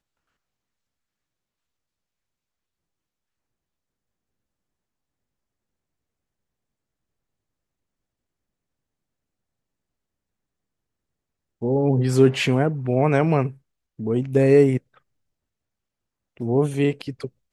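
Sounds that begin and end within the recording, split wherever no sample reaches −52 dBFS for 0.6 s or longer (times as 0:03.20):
0:11.61–0:14.98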